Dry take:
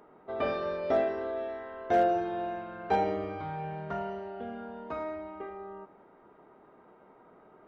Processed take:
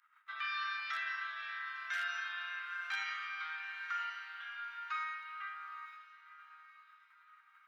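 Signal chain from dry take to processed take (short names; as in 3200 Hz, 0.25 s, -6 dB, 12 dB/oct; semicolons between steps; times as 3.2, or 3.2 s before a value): gate -55 dBFS, range -18 dB; steep high-pass 1300 Hz 48 dB/oct; limiter -38.5 dBFS, peak gain reduction 8.5 dB; on a send: diffused feedback echo 0.919 s, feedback 40%, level -13.5 dB; on the sum: gain +9 dB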